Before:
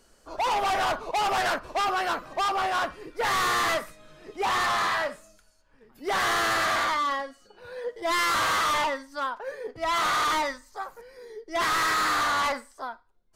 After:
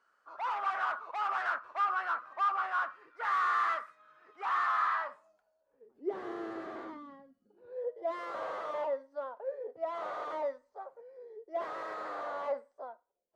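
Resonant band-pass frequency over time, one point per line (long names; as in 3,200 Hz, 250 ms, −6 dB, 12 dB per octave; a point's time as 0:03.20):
resonant band-pass, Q 3.8
0:04.93 1,300 Hz
0:06.08 360 Hz
0:06.83 360 Hz
0:07.25 140 Hz
0:07.86 570 Hz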